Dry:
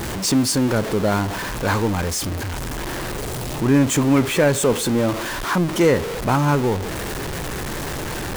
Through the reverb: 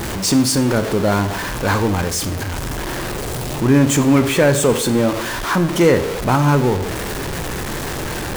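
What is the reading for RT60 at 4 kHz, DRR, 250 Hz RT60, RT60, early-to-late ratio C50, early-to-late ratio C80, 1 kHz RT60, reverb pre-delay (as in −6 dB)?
0.60 s, 10.5 dB, 0.85 s, 0.65 s, 13.5 dB, 16.0 dB, 0.60 s, 22 ms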